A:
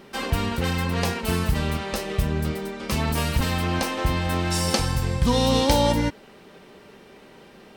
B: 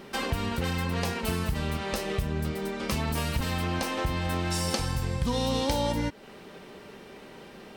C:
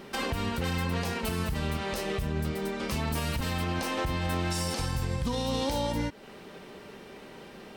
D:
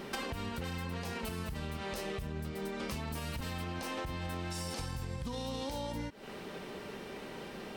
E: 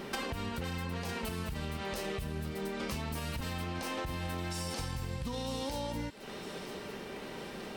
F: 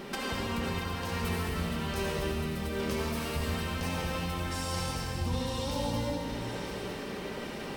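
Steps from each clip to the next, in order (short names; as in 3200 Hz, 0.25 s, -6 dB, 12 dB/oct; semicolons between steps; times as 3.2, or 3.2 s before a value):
compressor 2.5:1, threshold -30 dBFS, peak gain reduction 10.5 dB; gain +1.5 dB
limiter -20.5 dBFS, peak gain reduction 8.5 dB
compressor 12:1, threshold -37 dBFS, peak gain reduction 12 dB; gain +2 dB
thin delay 0.955 s, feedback 48%, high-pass 2400 Hz, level -9 dB; gain +1.5 dB
reverb RT60 3.3 s, pre-delay 62 ms, DRR -3 dB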